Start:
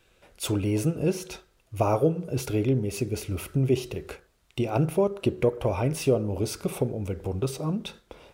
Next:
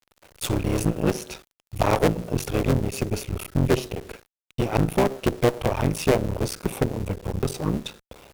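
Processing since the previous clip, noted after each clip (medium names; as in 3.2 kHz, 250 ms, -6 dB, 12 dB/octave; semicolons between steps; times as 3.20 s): cycle switcher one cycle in 3, muted; bit crusher 9-bit; Chebyshev shaper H 8 -20 dB, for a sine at -10.5 dBFS; trim +3.5 dB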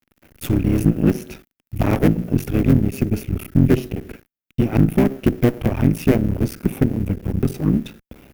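graphic EQ 250/500/1000/4000/8000 Hz +7/-7/-10/-10/-11 dB; trim +5.5 dB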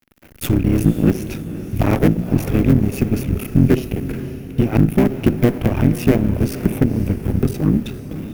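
in parallel at +0.5 dB: compression, threshold -23 dBFS, peak gain reduction 13.5 dB; on the sum: echo that smears into a reverb 515 ms, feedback 47%, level -12.5 dB; trim -1 dB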